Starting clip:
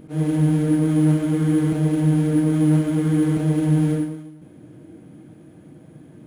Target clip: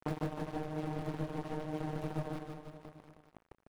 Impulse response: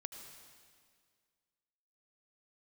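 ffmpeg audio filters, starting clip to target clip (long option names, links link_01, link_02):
-filter_complex "[0:a]atempo=1.7,acrossover=split=170|3400[link_01][link_02][link_03];[link_01]crystalizer=i=5:c=0[link_04];[link_04][link_02][link_03]amix=inputs=3:normalize=0,acrossover=split=180|6400[link_05][link_06][link_07];[link_05]acompressor=threshold=-21dB:ratio=4[link_08];[link_06]acompressor=threshold=-27dB:ratio=4[link_09];[link_07]acompressor=threshold=-57dB:ratio=4[link_10];[link_08][link_09][link_10]amix=inputs=3:normalize=0,asplit=2[link_11][link_12];[link_12]aeval=exprs='(mod(15*val(0)+1,2)-1)/15':channel_layout=same,volume=-11dB[link_13];[link_11][link_13]amix=inputs=2:normalize=0,highshelf=frequency=6100:gain=-12,asplit=2[link_14][link_15];[link_15]adelay=20,volume=-9dB[link_16];[link_14][link_16]amix=inputs=2:normalize=0,acompressor=threshold=-33dB:ratio=10,aeval=exprs='sgn(val(0))*max(abs(val(0))-0.0211,0)':channel_layout=same,aecho=1:1:150|315|496.5|696.2|915.8:0.631|0.398|0.251|0.158|0.1,volume=7.5dB"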